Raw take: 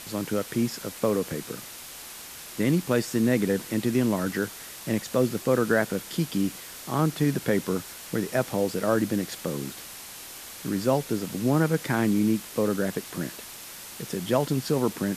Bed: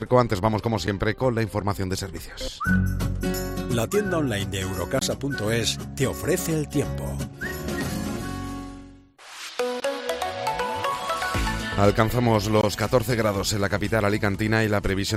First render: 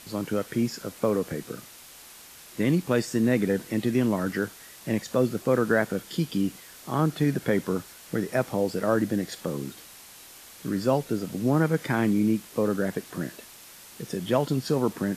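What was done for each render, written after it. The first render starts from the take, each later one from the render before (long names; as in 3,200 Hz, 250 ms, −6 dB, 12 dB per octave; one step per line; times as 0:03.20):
noise reduction from a noise print 6 dB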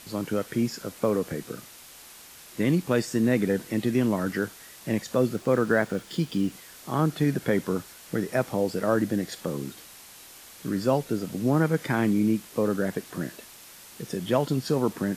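0:05.36–0:06.52: running median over 3 samples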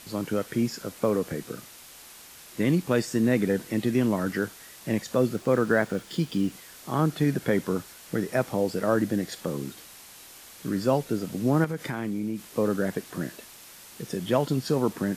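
0:11.64–0:12.45: downward compressor 4 to 1, threshold −27 dBFS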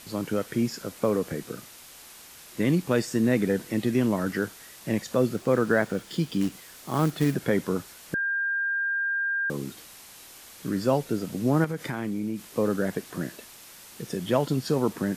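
0:06.41–0:07.35: floating-point word with a short mantissa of 2 bits
0:08.14–0:09.50: beep over 1,600 Hz −24 dBFS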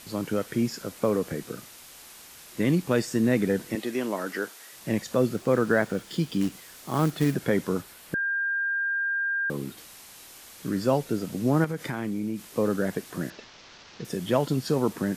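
0:03.75–0:04.73: high-pass filter 360 Hz
0:07.81–0:09.78: parametric band 6,300 Hz −5 dB
0:13.30–0:14.05: variable-slope delta modulation 32 kbit/s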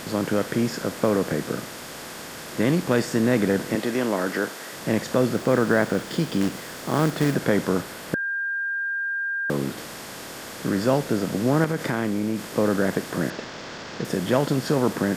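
compressor on every frequency bin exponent 0.6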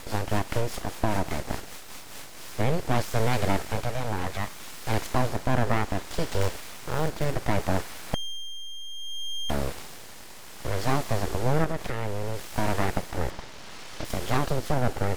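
rotating-speaker cabinet horn 5 Hz, later 0.65 Hz, at 0:01.93
full-wave rectification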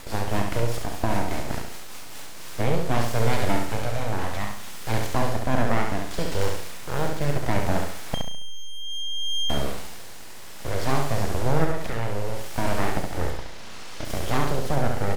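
double-tracking delay 35 ms −11 dB
repeating echo 69 ms, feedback 38%, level −4.5 dB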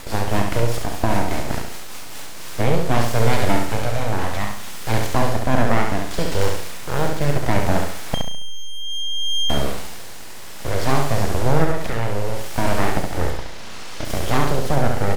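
level +5 dB
brickwall limiter −2 dBFS, peak gain reduction 1 dB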